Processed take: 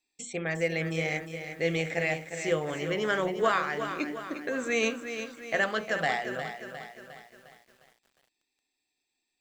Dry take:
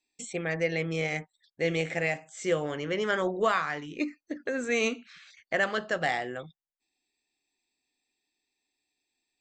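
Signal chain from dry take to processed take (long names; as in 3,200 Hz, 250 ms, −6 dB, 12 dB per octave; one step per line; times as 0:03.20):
mains-hum notches 60/120/180/240/300/360/420/480/540/600 Hz
feedback echo at a low word length 356 ms, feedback 55%, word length 9 bits, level −9 dB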